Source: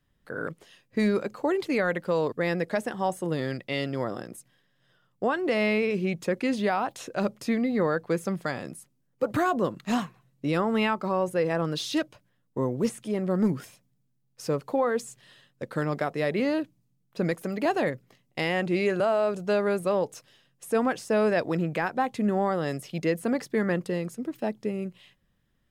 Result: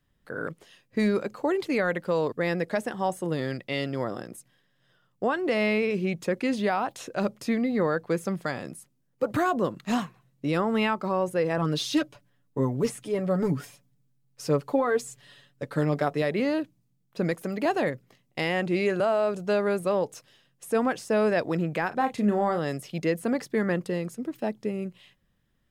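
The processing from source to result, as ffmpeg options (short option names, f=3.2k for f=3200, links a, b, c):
-filter_complex "[0:a]asettb=1/sr,asplit=3[a][b][c];[a]atrim=end=11.574[d];[b]atrim=start=11.57:end=16.22,asetpts=PTS-STARTPTS,afade=t=in:d=0.004:c=qsin,afade=t=out:st=4.646:d=0.004:c=qsin,aecho=1:1:7:0.65,atrim=end_sample=205065[e];[c]atrim=start=16.216[f];[d][e]acrossfade=d=0.004:c1=hsin:c2=qsin[g];[g][f]acrossfade=d=0.004:c1=qsin:c2=hsin,asettb=1/sr,asplit=3[h][i][j];[h]atrim=end=21.884[k];[i]atrim=start=21.88:end=22.59,asetpts=PTS-STARTPTS,afade=t=in:d=0.004:c=qsin,afade=t=out:st=0.706:d=0.004:c=qsin,asplit=2[l][m];[m]adelay=34,volume=-7.5dB[n];[l][n]amix=inputs=2:normalize=0,atrim=end_sample=31311[o];[j]atrim=start=22.586[p];[k][o]acrossfade=d=0.004:c1=hsin:c2=qsin[q];[q][p]acrossfade=d=0.004:c1=qsin:c2=hsin"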